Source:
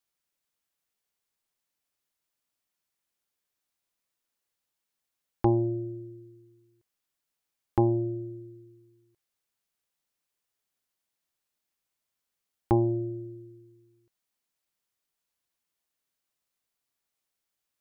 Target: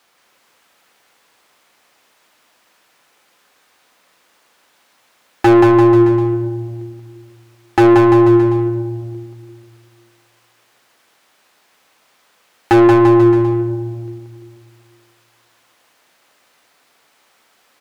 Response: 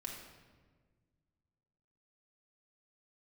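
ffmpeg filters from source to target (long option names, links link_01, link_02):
-filter_complex "[0:a]asplit=2[link_01][link_02];[1:a]atrim=start_sample=2205[link_03];[link_02][link_03]afir=irnorm=-1:irlink=0,volume=-9dB[link_04];[link_01][link_04]amix=inputs=2:normalize=0,asplit=2[link_05][link_06];[link_06]highpass=frequency=720:poles=1,volume=33dB,asoftclip=type=tanh:threshold=-9.5dB[link_07];[link_05][link_07]amix=inputs=2:normalize=0,lowpass=frequency=1300:poles=1,volume=-6dB,aeval=exprs='0.211*(abs(mod(val(0)/0.211+3,4)-2)-1)':channel_layout=same,aecho=1:1:180|342|487.8|619|737.1:0.631|0.398|0.251|0.158|0.1,volume=8.5dB"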